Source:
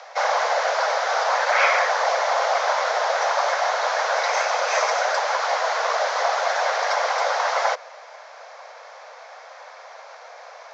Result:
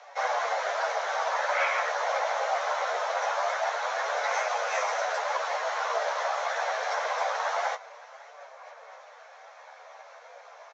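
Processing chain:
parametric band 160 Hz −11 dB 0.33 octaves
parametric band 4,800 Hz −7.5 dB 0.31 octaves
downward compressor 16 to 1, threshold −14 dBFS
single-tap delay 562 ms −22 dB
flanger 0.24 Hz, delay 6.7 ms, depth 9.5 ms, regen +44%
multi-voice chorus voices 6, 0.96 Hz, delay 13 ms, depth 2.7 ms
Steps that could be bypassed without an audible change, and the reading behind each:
parametric band 160 Hz: nothing at its input below 380 Hz

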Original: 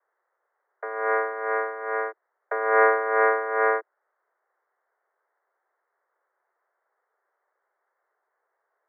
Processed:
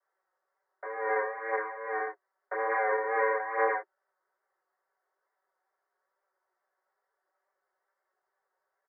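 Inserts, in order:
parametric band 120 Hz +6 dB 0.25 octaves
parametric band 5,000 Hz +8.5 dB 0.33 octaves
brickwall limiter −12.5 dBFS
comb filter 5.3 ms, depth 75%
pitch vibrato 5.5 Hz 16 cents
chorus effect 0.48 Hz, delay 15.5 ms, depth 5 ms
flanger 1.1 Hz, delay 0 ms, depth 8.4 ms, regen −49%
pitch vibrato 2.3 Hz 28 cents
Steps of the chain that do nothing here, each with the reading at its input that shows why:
parametric band 120 Hz: nothing at its input below 320 Hz
parametric band 5,000 Hz: nothing at its input above 2,200 Hz

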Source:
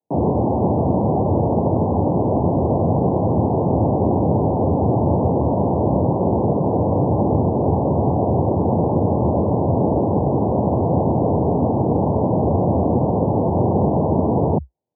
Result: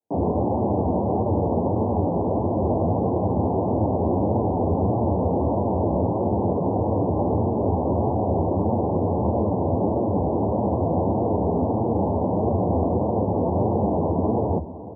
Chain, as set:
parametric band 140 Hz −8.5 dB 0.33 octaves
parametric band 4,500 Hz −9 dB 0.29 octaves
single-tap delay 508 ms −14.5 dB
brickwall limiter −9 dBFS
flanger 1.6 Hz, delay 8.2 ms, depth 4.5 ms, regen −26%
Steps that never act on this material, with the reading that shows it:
parametric band 4,500 Hz: nothing at its input above 1,100 Hz

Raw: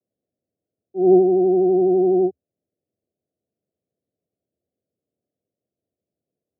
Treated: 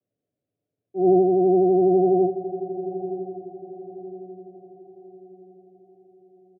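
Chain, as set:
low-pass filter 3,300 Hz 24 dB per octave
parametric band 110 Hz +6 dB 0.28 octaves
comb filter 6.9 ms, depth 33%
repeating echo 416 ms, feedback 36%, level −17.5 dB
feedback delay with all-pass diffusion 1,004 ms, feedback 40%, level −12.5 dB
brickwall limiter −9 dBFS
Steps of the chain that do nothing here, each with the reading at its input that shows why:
low-pass filter 3,300 Hz: nothing at its input above 810 Hz

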